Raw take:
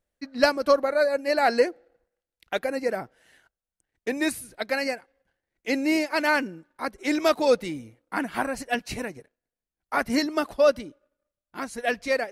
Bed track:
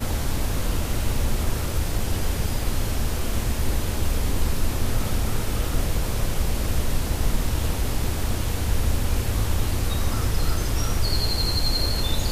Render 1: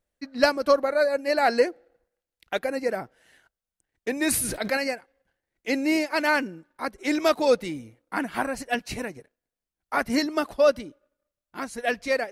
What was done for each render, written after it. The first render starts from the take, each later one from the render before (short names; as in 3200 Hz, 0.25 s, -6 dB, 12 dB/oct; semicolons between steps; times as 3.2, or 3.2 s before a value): 4.19–4.77 sustainer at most 34 dB/s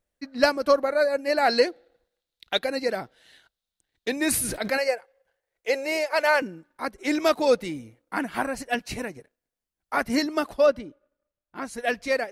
1.49–4.16 bell 3800 Hz +13.5 dB 0.62 oct; 4.78–6.42 resonant low shelf 370 Hz -8.5 dB, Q 3; 10.66–11.65 high shelf 4000 Hz -12 dB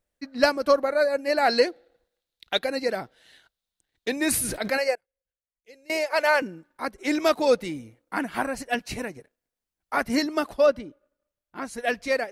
4.95–5.9 passive tone stack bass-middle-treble 10-0-1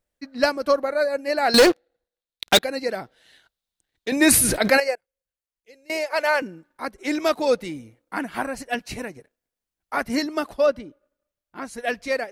1.54–2.59 sample leveller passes 5; 4.12–4.8 gain +8.5 dB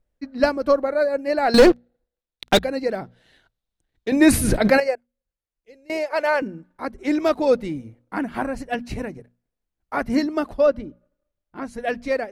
tilt -2.5 dB/oct; notches 60/120/180/240 Hz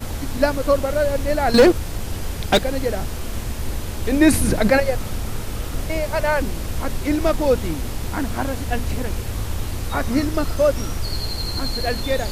add bed track -2.5 dB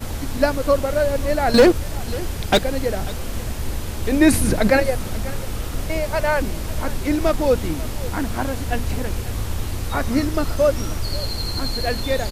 echo 0.542 s -18 dB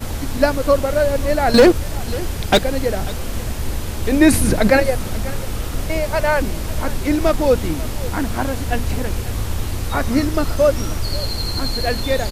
gain +2.5 dB; limiter -1 dBFS, peak gain reduction 1 dB